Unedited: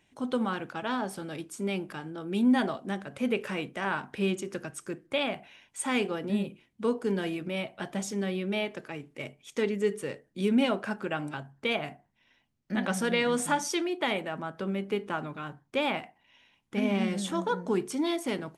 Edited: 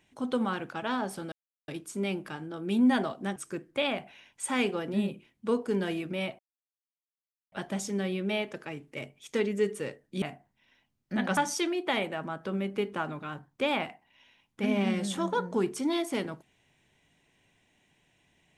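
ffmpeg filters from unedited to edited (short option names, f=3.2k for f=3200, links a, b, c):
-filter_complex "[0:a]asplit=6[a][b][c][d][e][f];[a]atrim=end=1.32,asetpts=PTS-STARTPTS,afade=t=out:st=1.316:d=0.004:c=hsin,apad=pad_dur=0.36[g];[b]atrim=start=1.32:end=3.002,asetpts=PTS-STARTPTS,afade=t=in:d=0.004:c=hsin[h];[c]atrim=start=4.718:end=7.75,asetpts=PTS-STARTPTS,afade=t=out:st=3.028:d=0.004:c=hsin,apad=pad_dur=1.13[i];[d]atrim=start=7.75:end=10.452,asetpts=PTS-STARTPTS,afade=t=in:d=0.004:c=hsin[j];[e]atrim=start=11.808:end=12.962[k];[f]atrim=start=13.508[l];[g][h]concat=n=2:v=0:a=1[m];[i][j]concat=n=2:v=0:a=1[n];[m][n]acrossfade=d=0.004:c1=hsin:c2=hsin[o];[o][k]acrossfade=d=0.004:c1=hsin:c2=hsin[p];[p][l]acrossfade=d=0.004:c1=hsin:c2=hsin"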